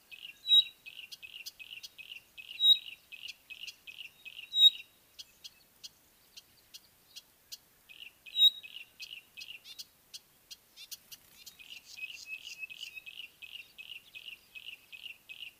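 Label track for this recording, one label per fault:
9.720000	9.720000	dropout 2.5 ms

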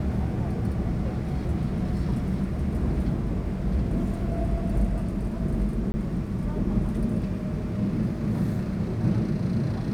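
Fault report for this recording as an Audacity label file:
5.920000	5.940000	dropout 20 ms

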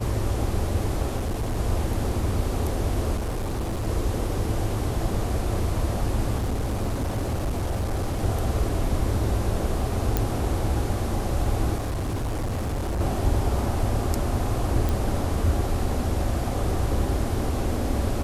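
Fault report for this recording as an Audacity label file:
1.170000	1.570000	clipped -22.5 dBFS
3.160000	3.880000	clipped -24 dBFS
6.370000	8.230000	clipped -22 dBFS
10.170000	10.170000	pop
11.760000	13.010000	clipped -24 dBFS
14.890000	14.890000	pop

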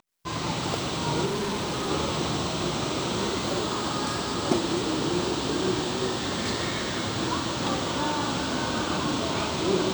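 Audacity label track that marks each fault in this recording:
1.250000	1.900000	clipped -25.5 dBFS

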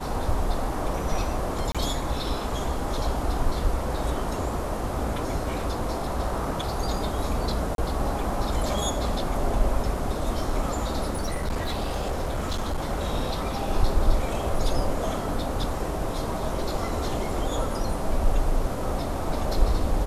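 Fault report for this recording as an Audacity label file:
1.720000	1.750000	dropout 26 ms
7.750000	7.780000	dropout 32 ms
11.140000	12.800000	clipped -23 dBFS

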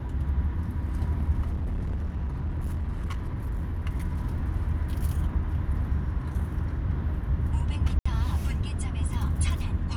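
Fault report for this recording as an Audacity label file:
1.500000	3.820000	clipped -26 dBFS
7.990000	8.050000	dropout 65 ms

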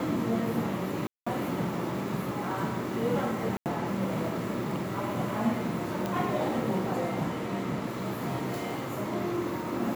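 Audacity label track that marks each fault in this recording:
1.070000	1.260000	dropout 195 ms
3.570000	3.660000	dropout 88 ms
6.060000	6.060000	pop

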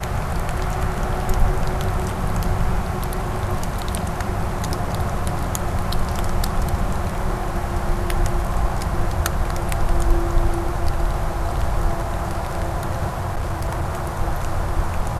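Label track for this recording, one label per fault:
13.080000	13.860000	clipped -18.5 dBFS

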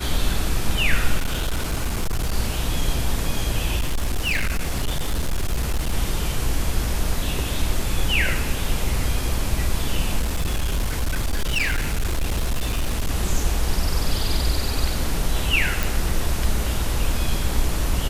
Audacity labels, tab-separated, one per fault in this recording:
1.170000	2.340000	clipped -18.5 dBFS
3.760000	5.920000	clipped -18 dBFS
10.190000	13.100000	clipped -18 dBFS
15.830000	15.830000	pop

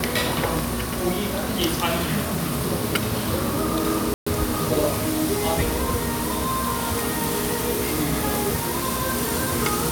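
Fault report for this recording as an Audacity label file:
4.140000	4.260000	dropout 125 ms

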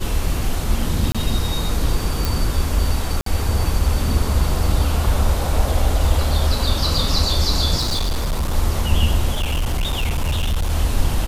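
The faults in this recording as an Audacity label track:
1.120000	1.150000	dropout 26 ms
2.250000	2.250000	pop
3.210000	3.260000	dropout 53 ms
7.770000	8.550000	clipped -16.5 dBFS
9.330000	10.720000	clipped -16 dBFS

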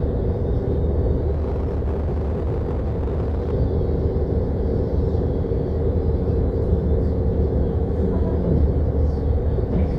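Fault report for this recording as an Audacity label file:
1.310000	3.530000	clipped -19.5 dBFS

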